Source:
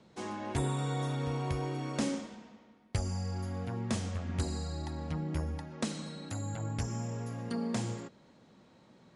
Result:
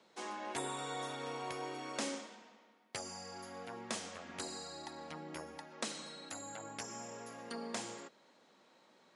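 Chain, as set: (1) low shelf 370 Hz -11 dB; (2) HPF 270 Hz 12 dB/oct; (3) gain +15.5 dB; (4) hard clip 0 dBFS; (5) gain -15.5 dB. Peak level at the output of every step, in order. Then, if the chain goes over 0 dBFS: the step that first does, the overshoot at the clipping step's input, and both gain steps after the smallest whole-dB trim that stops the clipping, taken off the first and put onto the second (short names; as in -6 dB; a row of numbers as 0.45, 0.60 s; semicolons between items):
-20.5, -20.0, -4.5, -4.5, -20.0 dBFS; no overload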